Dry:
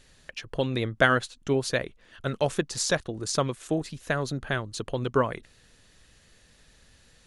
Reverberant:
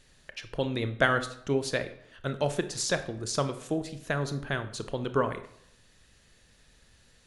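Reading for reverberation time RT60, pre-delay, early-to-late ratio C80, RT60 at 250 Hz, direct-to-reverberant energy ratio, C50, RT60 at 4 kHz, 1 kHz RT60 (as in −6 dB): 0.70 s, 23 ms, 15.5 dB, 0.70 s, 9.5 dB, 12.5 dB, 0.50 s, 0.70 s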